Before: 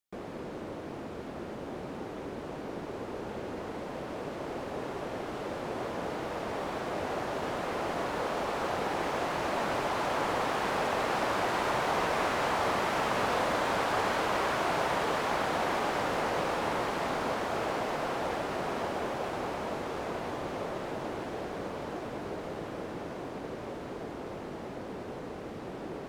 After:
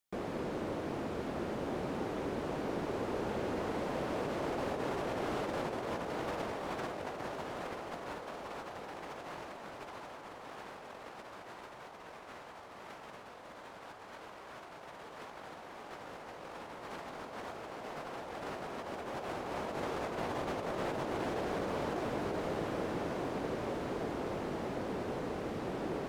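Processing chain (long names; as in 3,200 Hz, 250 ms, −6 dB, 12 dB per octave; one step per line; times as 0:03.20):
compressor whose output falls as the input rises −37 dBFS, ratio −0.5
level −2 dB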